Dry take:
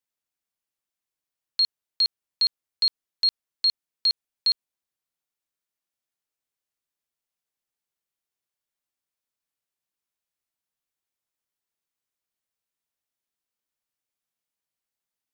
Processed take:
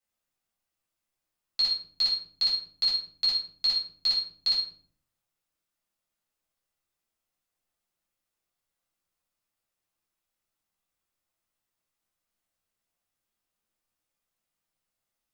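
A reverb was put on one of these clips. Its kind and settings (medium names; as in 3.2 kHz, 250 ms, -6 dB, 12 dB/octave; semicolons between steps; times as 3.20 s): simulated room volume 570 m³, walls furnished, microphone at 6.8 m; trim -5 dB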